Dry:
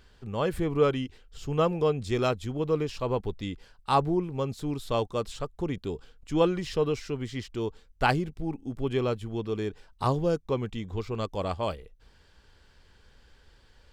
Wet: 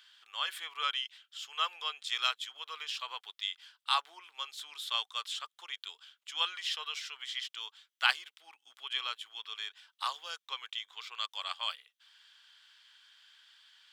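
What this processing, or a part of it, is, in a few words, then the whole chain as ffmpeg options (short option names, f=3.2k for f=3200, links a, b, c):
headphones lying on a table: -af "highpass=f=1.2k:w=0.5412,highpass=f=1.2k:w=1.3066,equalizer=f=3.3k:t=o:w=0.44:g=11"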